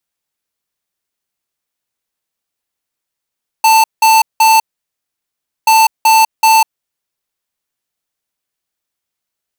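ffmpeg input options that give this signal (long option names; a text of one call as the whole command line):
ffmpeg -f lavfi -i "aevalsrc='0.422*(2*lt(mod(888*t,1),0.5)-1)*clip(min(mod(mod(t,2.03),0.38),0.2-mod(mod(t,2.03),0.38))/0.005,0,1)*lt(mod(t,2.03),1.14)':duration=4.06:sample_rate=44100" out.wav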